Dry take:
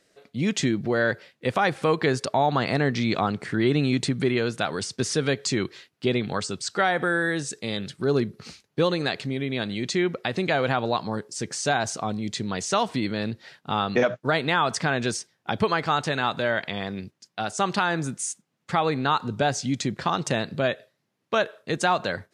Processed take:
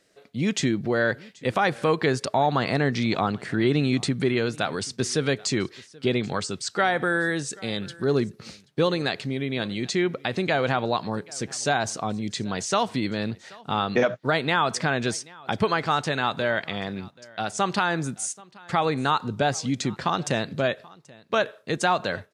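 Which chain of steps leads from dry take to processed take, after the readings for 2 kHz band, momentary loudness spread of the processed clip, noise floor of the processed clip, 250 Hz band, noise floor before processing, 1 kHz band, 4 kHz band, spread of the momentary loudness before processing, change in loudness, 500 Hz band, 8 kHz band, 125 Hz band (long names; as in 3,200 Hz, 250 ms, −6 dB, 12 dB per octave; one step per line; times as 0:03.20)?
0.0 dB, 8 LU, −54 dBFS, 0.0 dB, −74 dBFS, 0.0 dB, 0.0 dB, 8 LU, 0.0 dB, 0.0 dB, 0.0 dB, 0.0 dB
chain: single-tap delay 782 ms −23.5 dB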